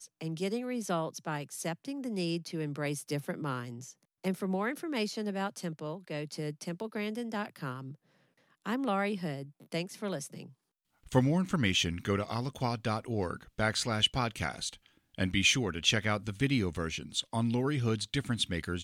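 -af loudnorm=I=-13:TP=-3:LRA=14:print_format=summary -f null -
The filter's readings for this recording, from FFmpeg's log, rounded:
Input Integrated:    -32.8 LUFS
Input True Peak:     -11.2 dBTP
Input LRA:             7.2 LU
Input Threshold:     -43.1 LUFS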